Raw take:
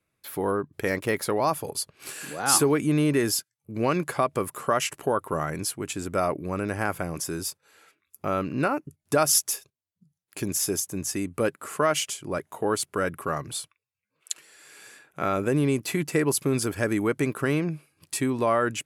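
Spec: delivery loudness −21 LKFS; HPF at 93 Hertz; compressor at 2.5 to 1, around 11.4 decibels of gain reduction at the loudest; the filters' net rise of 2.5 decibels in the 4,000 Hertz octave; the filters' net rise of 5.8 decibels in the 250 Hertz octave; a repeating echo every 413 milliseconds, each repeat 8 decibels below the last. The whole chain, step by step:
high-pass filter 93 Hz
parametric band 250 Hz +7.5 dB
parametric band 4,000 Hz +3.5 dB
downward compressor 2.5 to 1, threshold −32 dBFS
repeating echo 413 ms, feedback 40%, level −8 dB
level +11.5 dB

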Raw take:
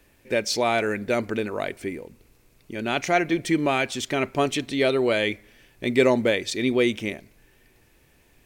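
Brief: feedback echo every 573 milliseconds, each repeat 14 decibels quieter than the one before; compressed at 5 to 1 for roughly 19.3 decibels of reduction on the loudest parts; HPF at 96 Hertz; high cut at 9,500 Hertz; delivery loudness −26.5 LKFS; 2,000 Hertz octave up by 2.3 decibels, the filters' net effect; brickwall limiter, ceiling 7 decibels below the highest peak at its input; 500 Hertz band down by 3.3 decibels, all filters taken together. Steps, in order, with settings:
high-pass filter 96 Hz
low-pass filter 9,500 Hz
parametric band 500 Hz −4.5 dB
parametric band 2,000 Hz +3 dB
downward compressor 5 to 1, threshold −38 dBFS
brickwall limiter −29 dBFS
repeating echo 573 ms, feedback 20%, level −14 dB
level +15.5 dB

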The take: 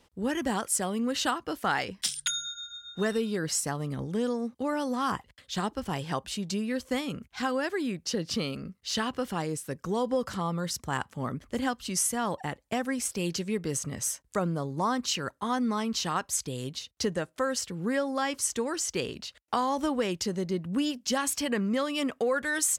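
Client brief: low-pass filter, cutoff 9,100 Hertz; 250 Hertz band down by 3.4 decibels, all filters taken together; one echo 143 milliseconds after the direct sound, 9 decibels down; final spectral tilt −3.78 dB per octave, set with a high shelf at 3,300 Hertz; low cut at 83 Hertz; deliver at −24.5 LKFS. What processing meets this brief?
high-pass filter 83 Hz
low-pass filter 9,100 Hz
parametric band 250 Hz −4 dB
high-shelf EQ 3,300 Hz −4.5 dB
single-tap delay 143 ms −9 dB
level +8 dB

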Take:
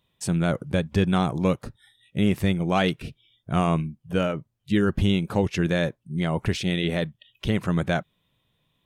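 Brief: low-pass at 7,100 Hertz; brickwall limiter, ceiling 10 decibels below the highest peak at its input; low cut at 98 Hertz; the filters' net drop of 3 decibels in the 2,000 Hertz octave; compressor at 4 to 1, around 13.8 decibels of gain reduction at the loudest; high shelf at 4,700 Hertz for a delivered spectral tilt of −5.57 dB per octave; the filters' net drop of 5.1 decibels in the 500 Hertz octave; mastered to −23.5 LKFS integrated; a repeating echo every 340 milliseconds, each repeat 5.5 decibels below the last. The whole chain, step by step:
high-pass filter 98 Hz
low-pass filter 7,100 Hz
parametric band 500 Hz −6.5 dB
parametric band 2,000 Hz −5 dB
high-shelf EQ 4,700 Hz +7.5 dB
downward compressor 4 to 1, threshold −36 dBFS
brickwall limiter −30.5 dBFS
repeating echo 340 ms, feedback 53%, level −5.5 dB
level +17.5 dB

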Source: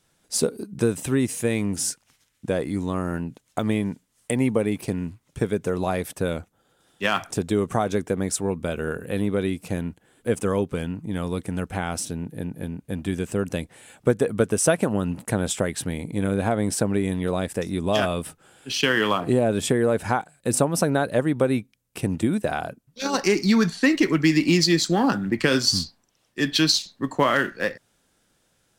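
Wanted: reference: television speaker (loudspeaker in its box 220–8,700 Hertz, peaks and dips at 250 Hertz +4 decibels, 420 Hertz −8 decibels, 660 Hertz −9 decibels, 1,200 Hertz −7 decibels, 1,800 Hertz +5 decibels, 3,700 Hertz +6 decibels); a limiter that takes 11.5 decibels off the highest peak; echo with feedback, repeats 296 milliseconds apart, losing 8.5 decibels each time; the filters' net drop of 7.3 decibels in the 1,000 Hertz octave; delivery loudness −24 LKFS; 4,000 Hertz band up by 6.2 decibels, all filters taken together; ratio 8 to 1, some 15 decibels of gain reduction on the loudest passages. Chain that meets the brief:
parametric band 1,000 Hz −4.5 dB
parametric band 4,000 Hz +4.5 dB
downward compressor 8 to 1, threshold −28 dBFS
brickwall limiter −22 dBFS
loudspeaker in its box 220–8,700 Hz, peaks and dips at 250 Hz +4 dB, 420 Hz −8 dB, 660 Hz −9 dB, 1,200 Hz −7 dB, 1,800 Hz +5 dB, 3,700 Hz +6 dB
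repeating echo 296 ms, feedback 38%, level −8.5 dB
level +11 dB

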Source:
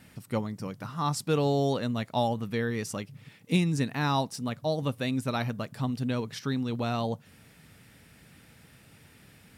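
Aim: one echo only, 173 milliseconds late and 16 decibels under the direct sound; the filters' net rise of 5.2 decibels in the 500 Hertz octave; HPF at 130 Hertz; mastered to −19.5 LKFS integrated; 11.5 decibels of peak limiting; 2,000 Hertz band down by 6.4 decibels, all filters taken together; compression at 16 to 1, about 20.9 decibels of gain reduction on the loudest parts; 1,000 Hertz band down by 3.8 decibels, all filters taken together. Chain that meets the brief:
high-pass filter 130 Hz
parametric band 500 Hz +8.5 dB
parametric band 1,000 Hz −8 dB
parametric band 2,000 Hz −6.5 dB
downward compressor 16 to 1, threshold −38 dBFS
brickwall limiter −38.5 dBFS
single-tap delay 173 ms −16 dB
level +29.5 dB

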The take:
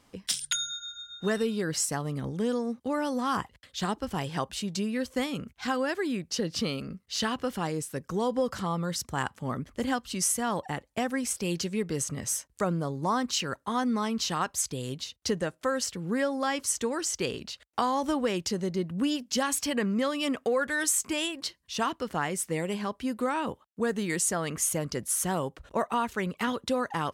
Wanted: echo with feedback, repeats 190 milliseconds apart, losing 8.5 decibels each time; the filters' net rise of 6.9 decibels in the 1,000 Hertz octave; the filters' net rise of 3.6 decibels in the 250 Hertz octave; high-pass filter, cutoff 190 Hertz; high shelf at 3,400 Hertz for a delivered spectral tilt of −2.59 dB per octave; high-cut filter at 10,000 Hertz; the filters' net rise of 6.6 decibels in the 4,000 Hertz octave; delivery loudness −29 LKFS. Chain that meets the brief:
high-pass filter 190 Hz
low-pass filter 10,000 Hz
parametric band 250 Hz +5.5 dB
parametric band 1,000 Hz +7.5 dB
high-shelf EQ 3,400 Hz +5 dB
parametric band 4,000 Hz +4.5 dB
repeating echo 190 ms, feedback 38%, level −8.5 dB
level −4 dB

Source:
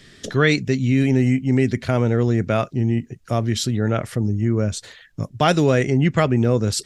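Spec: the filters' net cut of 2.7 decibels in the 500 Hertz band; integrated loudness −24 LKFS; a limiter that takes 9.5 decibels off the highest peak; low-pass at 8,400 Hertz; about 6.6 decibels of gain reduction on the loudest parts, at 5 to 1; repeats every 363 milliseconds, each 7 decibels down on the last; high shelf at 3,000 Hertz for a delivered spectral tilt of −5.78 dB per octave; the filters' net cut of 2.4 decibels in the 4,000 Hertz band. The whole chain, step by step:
low-pass filter 8,400 Hz
parametric band 500 Hz −3.5 dB
high-shelf EQ 3,000 Hz +4 dB
parametric band 4,000 Hz −6 dB
downward compressor 5 to 1, threshold −21 dBFS
brickwall limiter −18.5 dBFS
repeating echo 363 ms, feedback 45%, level −7 dB
level +4.5 dB

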